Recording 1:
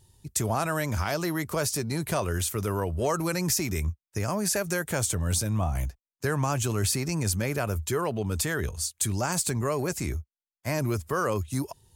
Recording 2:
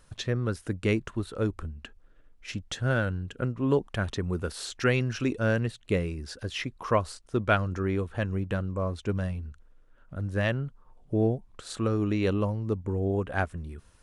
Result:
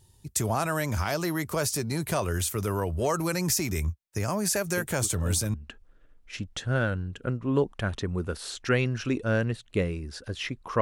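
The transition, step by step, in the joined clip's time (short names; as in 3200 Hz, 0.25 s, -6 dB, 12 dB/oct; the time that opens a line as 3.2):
recording 1
4.77 add recording 2 from 0.92 s 0.77 s -10 dB
5.54 switch to recording 2 from 1.69 s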